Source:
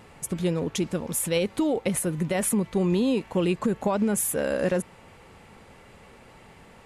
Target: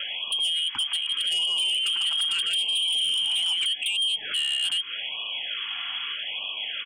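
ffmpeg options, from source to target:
ffmpeg -i in.wav -filter_complex "[0:a]lowpass=frequency=2900:width_type=q:width=0.5098,lowpass=frequency=2900:width_type=q:width=0.6013,lowpass=frequency=2900:width_type=q:width=0.9,lowpass=frequency=2900:width_type=q:width=2.563,afreqshift=-3400,highshelf=frequency=2000:gain=8,asplit=3[link_01][link_02][link_03];[link_01]afade=type=out:start_time=1.16:duration=0.02[link_04];[link_02]aecho=1:1:150|255|328.5|380|416:0.631|0.398|0.251|0.158|0.1,afade=type=in:start_time=1.16:duration=0.02,afade=type=out:start_time=3.64:duration=0.02[link_05];[link_03]afade=type=in:start_time=3.64:duration=0.02[link_06];[link_04][link_05][link_06]amix=inputs=3:normalize=0,acrossover=split=450|2000[link_07][link_08][link_09];[link_07]acompressor=threshold=-54dB:ratio=4[link_10];[link_08]acompressor=threshold=-40dB:ratio=4[link_11];[link_09]acompressor=threshold=-25dB:ratio=4[link_12];[link_10][link_11][link_12]amix=inputs=3:normalize=0,lowshelf=frequency=160:gain=-5.5,aeval=exprs='0.141*sin(PI/2*1.58*val(0)/0.141)':channel_layout=same,alimiter=level_in=3.5dB:limit=-24dB:level=0:latency=1:release=104,volume=-3.5dB,afftfilt=real='re*(1-between(b*sr/1024,440*pow(1700/440,0.5+0.5*sin(2*PI*0.81*pts/sr))/1.41,440*pow(1700/440,0.5+0.5*sin(2*PI*0.81*pts/sr))*1.41))':imag='im*(1-between(b*sr/1024,440*pow(1700/440,0.5+0.5*sin(2*PI*0.81*pts/sr))/1.41,440*pow(1700/440,0.5+0.5*sin(2*PI*0.81*pts/sr))*1.41))':win_size=1024:overlap=0.75,volume=6dB" out.wav

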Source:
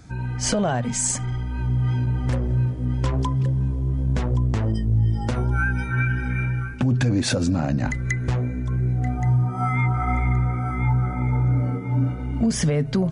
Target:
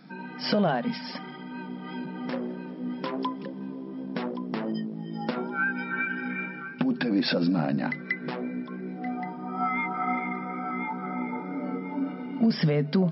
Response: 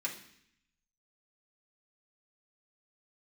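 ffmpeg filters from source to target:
-af "aeval=exprs='val(0)+0.00708*(sin(2*PI*50*n/s)+sin(2*PI*2*50*n/s)/2+sin(2*PI*3*50*n/s)/3+sin(2*PI*4*50*n/s)/4+sin(2*PI*5*50*n/s)/5)':channel_layout=same,afftfilt=real='re*between(b*sr/4096,140,5500)':imag='im*between(b*sr/4096,140,5500)':win_size=4096:overlap=0.75,volume=-1.5dB"

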